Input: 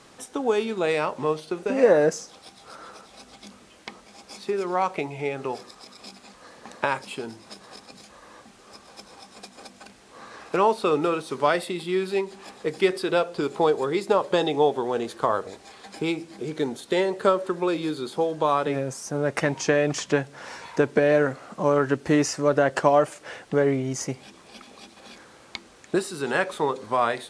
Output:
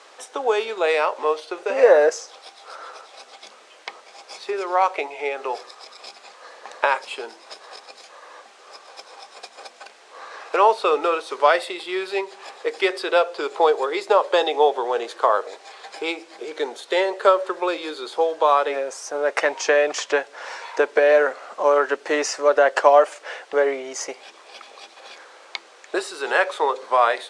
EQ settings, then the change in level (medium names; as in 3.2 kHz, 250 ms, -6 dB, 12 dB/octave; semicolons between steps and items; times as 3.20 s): high-pass 460 Hz 24 dB/octave; distance through air 56 m; +6.0 dB